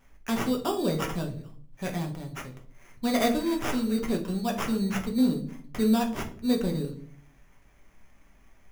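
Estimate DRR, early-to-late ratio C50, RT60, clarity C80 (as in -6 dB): 1.0 dB, 11.5 dB, 0.50 s, 15.5 dB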